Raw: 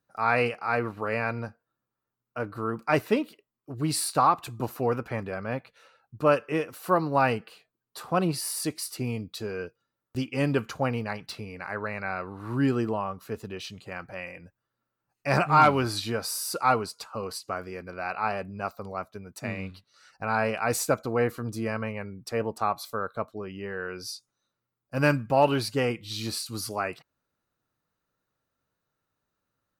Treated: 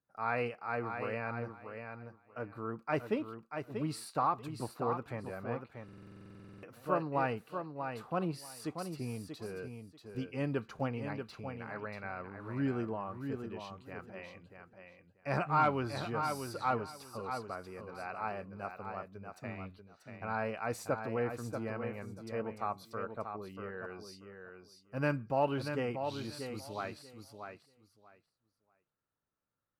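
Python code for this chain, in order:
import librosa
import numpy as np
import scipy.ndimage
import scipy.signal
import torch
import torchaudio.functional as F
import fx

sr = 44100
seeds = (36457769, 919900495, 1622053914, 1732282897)

y = fx.high_shelf(x, sr, hz=3800.0, db=-11.0)
y = fx.echo_feedback(y, sr, ms=637, feedback_pct=18, wet_db=-7.0)
y = fx.buffer_glitch(y, sr, at_s=(5.84,), block=2048, repeats=16)
y = y * 10.0 ** (-9.0 / 20.0)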